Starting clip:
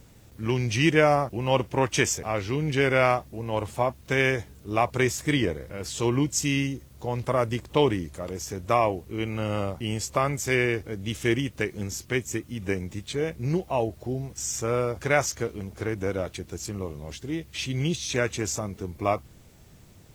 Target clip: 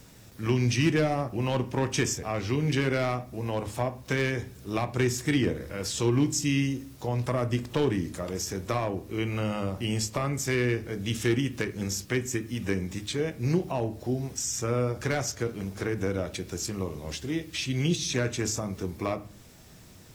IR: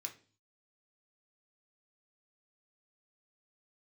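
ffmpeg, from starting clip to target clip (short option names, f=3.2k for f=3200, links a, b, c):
-filter_complex "[0:a]volume=16dB,asoftclip=hard,volume=-16dB,acrossover=split=360[a][b];[b]acompressor=threshold=-36dB:ratio=2.5[c];[a][c]amix=inputs=2:normalize=0,asplit=2[d][e];[1:a]atrim=start_sample=2205,asetrate=30870,aresample=44100[f];[e][f]afir=irnorm=-1:irlink=0,volume=-2dB[g];[d][g]amix=inputs=2:normalize=0"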